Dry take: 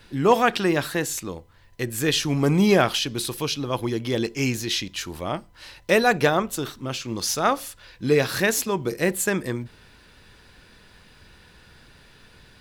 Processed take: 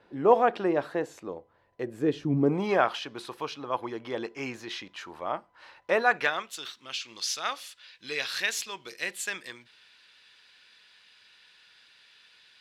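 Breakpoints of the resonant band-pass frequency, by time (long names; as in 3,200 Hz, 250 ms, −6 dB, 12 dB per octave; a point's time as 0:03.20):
resonant band-pass, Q 1.2
0:01.83 600 Hz
0:02.36 200 Hz
0:02.64 980 Hz
0:06.00 980 Hz
0:06.46 3,300 Hz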